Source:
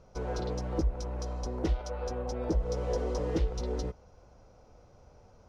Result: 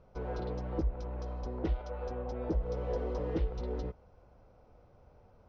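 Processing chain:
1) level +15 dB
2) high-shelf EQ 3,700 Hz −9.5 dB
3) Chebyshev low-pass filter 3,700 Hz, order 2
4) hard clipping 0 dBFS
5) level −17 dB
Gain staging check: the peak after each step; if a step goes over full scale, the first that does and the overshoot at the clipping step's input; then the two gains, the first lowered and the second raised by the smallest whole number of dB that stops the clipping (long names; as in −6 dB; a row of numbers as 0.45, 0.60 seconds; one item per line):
−5.0, −5.0, −6.0, −6.0, −23.0 dBFS
no step passes full scale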